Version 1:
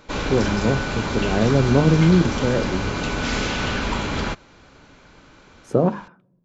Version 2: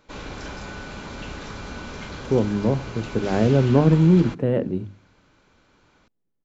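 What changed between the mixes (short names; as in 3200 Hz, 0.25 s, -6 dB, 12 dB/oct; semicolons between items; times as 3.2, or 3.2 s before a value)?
speech: entry +2.00 s; background -10.5 dB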